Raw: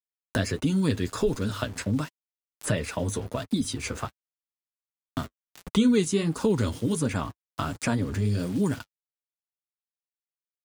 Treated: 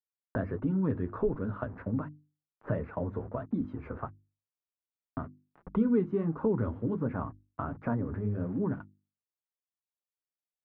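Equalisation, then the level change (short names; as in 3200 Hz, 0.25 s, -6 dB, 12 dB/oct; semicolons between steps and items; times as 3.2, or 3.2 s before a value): LPF 1400 Hz 24 dB/oct; notches 50/100/150/200/250/300/350 Hz; -4.0 dB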